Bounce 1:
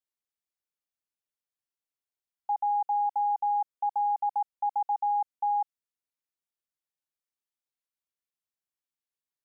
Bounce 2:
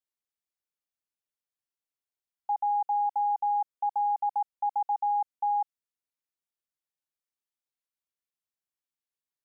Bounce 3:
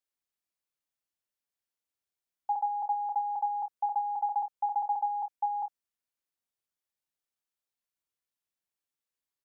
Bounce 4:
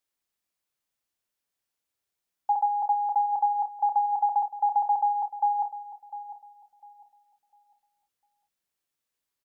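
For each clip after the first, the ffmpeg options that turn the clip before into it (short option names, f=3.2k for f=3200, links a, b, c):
-af anull
-af "aecho=1:1:31|54:0.355|0.188"
-filter_complex "[0:a]asplit=2[a][b];[b]adelay=701,lowpass=f=880:p=1,volume=-11.5dB,asplit=2[c][d];[d]adelay=701,lowpass=f=880:p=1,volume=0.34,asplit=2[e][f];[f]adelay=701,lowpass=f=880:p=1,volume=0.34,asplit=2[g][h];[h]adelay=701,lowpass=f=880:p=1,volume=0.34[i];[a][c][e][g][i]amix=inputs=5:normalize=0,volume=5.5dB"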